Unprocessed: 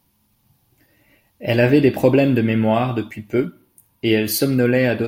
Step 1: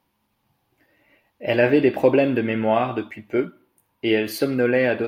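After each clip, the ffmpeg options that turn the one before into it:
-af "bass=f=250:g=-11,treble=f=4000:g=-13"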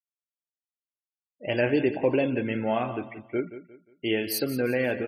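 -af "afftfilt=real='re*gte(hypot(re,im),0.0224)':imag='im*gte(hypot(re,im),0.0224)':win_size=1024:overlap=0.75,bass=f=250:g=3,treble=f=4000:g=14,aecho=1:1:177|354|531:0.211|0.0697|0.023,volume=0.422"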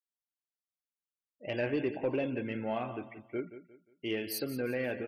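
-af "asoftclip=type=tanh:threshold=0.237,volume=0.422"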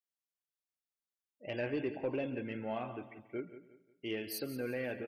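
-af "aecho=1:1:137|274|411|548:0.1|0.048|0.023|0.0111,volume=0.631"

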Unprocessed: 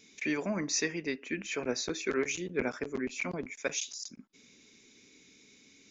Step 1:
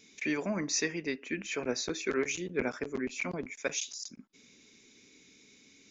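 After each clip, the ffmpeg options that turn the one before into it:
-af anull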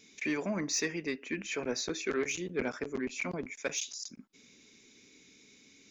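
-af "asoftclip=type=tanh:threshold=0.0841"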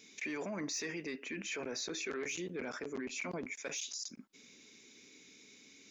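-af "alimiter=level_in=2.66:limit=0.0631:level=0:latency=1:release=18,volume=0.376,lowshelf=f=120:g=-11,volume=1.12"

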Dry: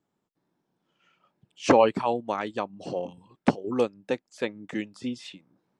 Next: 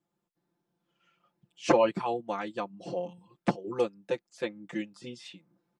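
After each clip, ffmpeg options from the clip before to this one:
-af "aecho=1:1:5.8:0.98,volume=0.447"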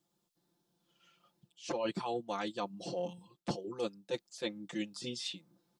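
-af "highshelf=f=2900:t=q:w=1.5:g=7,areverse,acompressor=threshold=0.0224:ratio=16,areverse,volume=1.12"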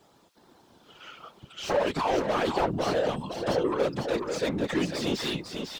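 -filter_complex "[0:a]asplit=2[s0][s1];[s1]highpass=f=720:p=1,volume=39.8,asoftclip=type=tanh:threshold=0.0944[s2];[s0][s2]amix=inputs=2:normalize=0,lowpass=f=1300:p=1,volume=0.501,aecho=1:1:499:0.531,afftfilt=real='hypot(re,im)*cos(2*PI*random(0))':imag='hypot(re,im)*sin(2*PI*random(1))':win_size=512:overlap=0.75,volume=2.66"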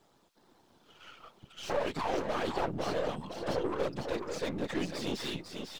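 -af "aeval=exprs='if(lt(val(0),0),0.447*val(0),val(0))':c=same,volume=0.631"

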